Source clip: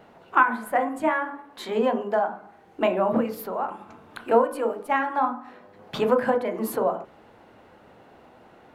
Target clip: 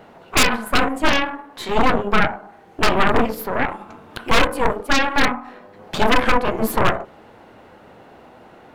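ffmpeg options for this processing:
-af "aeval=exprs='0.596*(cos(1*acos(clip(val(0)/0.596,-1,1)))-cos(1*PI/2))+0.0841*(cos(4*acos(clip(val(0)/0.596,-1,1)))-cos(4*PI/2))+0.15*(cos(7*acos(clip(val(0)/0.596,-1,1)))-cos(7*PI/2))+0.0944*(cos(8*acos(clip(val(0)/0.596,-1,1)))-cos(8*PI/2))':c=same,acontrast=72,aeval=exprs='0.422*(abs(mod(val(0)/0.422+3,4)-2)-1)':c=same,volume=2dB"

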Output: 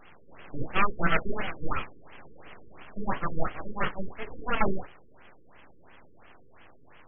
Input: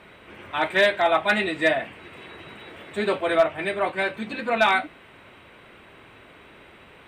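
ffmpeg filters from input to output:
-af "equalizer=f=320:w=5.6:g=-13,bandreject=f=60:t=h:w=6,bandreject=f=120:t=h:w=6,bandreject=f=180:t=h:w=6,bandreject=f=240:t=h:w=6,bandreject=f=300:t=h:w=6,bandreject=f=360:t=h:w=6,aeval=exprs='abs(val(0))':c=same,afftfilt=real='re*lt(b*sr/1024,480*pow(3400/480,0.5+0.5*sin(2*PI*2.9*pts/sr)))':imag='im*lt(b*sr/1024,480*pow(3400/480,0.5+0.5*sin(2*PI*2.9*pts/sr)))':win_size=1024:overlap=0.75"

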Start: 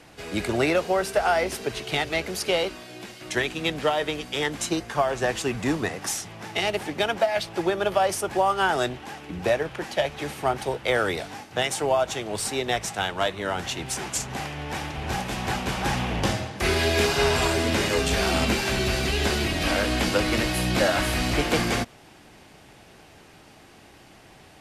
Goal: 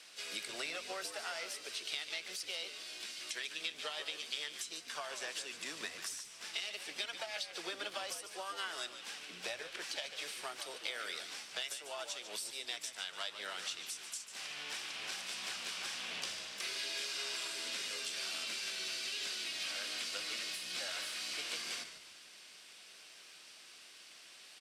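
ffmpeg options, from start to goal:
-filter_complex "[0:a]aderivative,acompressor=threshold=-44dB:ratio=5,highpass=f=120:w=0.5412,highpass=f=120:w=1.3066,equalizer=f=130:t=q:w=4:g=-8,equalizer=f=290:t=q:w=4:g=-3,equalizer=f=830:t=q:w=4:g=-10,equalizer=f=1.9k:t=q:w=4:g=-3,equalizer=f=6.8k:t=q:w=4:g=-9,lowpass=f=7.9k:w=0.5412,lowpass=f=7.9k:w=1.3066,asplit=2[a][b];[b]asetrate=58866,aresample=44100,atempo=0.749154,volume=-10dB[c];[a][c]amix=inputs=2:normalize=0,asplit=5[d][e][f][g][h];[e]adelay=146,afreqshift=-71,volume=-10.5dB[i];[f]adelay=292,afreqshift=-142,volume=-19.1dB[j];[g]adelay=438,afreqshift=-213,volume=-27.8dB[k];[h]adelay=584,afreqshift=-284,volume=-36.4dB[l];[d][i][j][k][l]amix=inputs=5:normalize=0,volume=7dB"

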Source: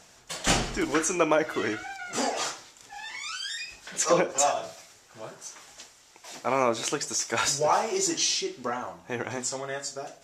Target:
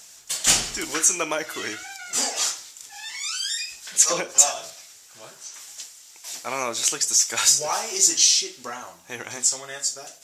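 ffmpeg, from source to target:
-filter_complex "[0:a]crystalizer=i=8:c=0,asettb=1/sr,asplit=3[a][b][c];[a]atrim=end=4.704[d];[b]atrim=start=4.7:end=5.54,asetpts=PTS-STARTPTS,afade=t=in:d=0.004:c=qsin,afade=t=out:st=0.836:d=0.004:c=qsin,acrossover=split=5100[e][f];[f]acompressor=threshold=-39dB:ratio=4:attack=1:release=60[g];[e][g]amix=inputs=2:normalize=0[h];[c]atrim=start=5.536[i];[d][h]acrossfade=d=0.004:c1=hsin:c2=qsin[j];[j][i]acrossfade=d=0.004:c1=qsin:c2=hsin,volume=-7dB"

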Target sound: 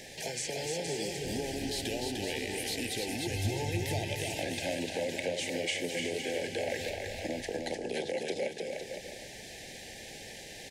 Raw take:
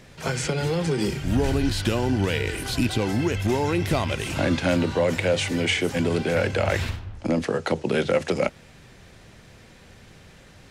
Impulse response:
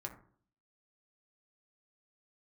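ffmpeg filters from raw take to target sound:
-filter_complex "[0:a]asuperstop=centerf=1200:order=12:qfactor=1.6,bass=f=250:g=-13,treble=f=4k:g=5,acompressor=threshold=-45dB:ratio=2.5,asettb=1/sr,asplit=3[a][b][c];[a]atrim=end=3.274[d];[b]atrim=start=3.27:end=3.84,asetpts=PTS-STARTPTS,afade=t=in:d=0.004:c=qsin,afade=t=out:st=0.566:d=0.004:c=qsin,lowshelf=f=170:t=q:w=3:g=9.5[e];[c]atrim=start=3.836[f];[d][e]acrossfade=d=0.004:c1=hsin:c2=qsin[g];[g][f]acrossfade=d=0.004:c1=qsin:c2=hsin,aecho=1:1:300|510|657|759.9|831.9:0.631|0.398|0.251|0.158|0.1,volume=4dB"

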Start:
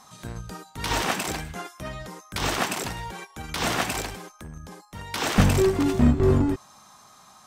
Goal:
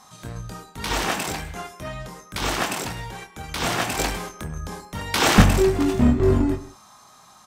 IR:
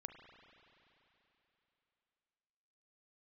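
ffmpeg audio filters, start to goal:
-filter_complex "[0:a]asettb=1/sr,asplit=3[a][b][c];[a]atrim=end=3.994[d];[b]atrim=start=3.99:end=5.42,asetpts=PTS-STARTPTS,afade=t=in:d=0.004:c=qsin,afade=t=out:st=1.426:d=0.004:c=qsin,acontrast=85[e];[c]atrim=start=5.416[f];[d][e]acrossfade=d=0.004:c1=hsin:c2=qsin[g];[g][f]acrossfade=d=0.004:c1=qsin:c2=hsin,asplit=2[h][i];[i]adelay=24,volume=-7dB[j];[h][j]amix=inputs=2:normalize=0,asplit=2[k][l];[1:a]atrim=start_sample=2205,atrim=end_sample=6174,asetrate=34398,aresample=44100[m];[l][m]afir=irnorm=-1:irlink=0,volume=9dB[n];[k][n]amix=inputs=2:normalize=0,volume=-8dB"

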